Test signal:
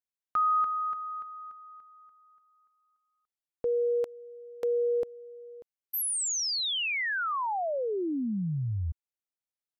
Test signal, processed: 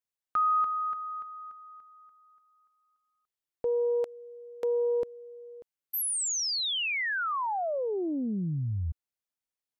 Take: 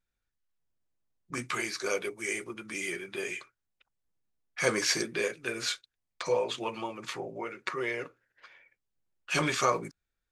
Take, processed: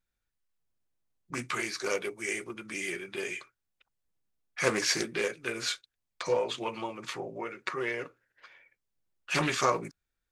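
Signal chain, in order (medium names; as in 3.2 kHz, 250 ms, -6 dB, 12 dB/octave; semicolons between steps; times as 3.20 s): loudspeaker Doppler distortion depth 0.25 ms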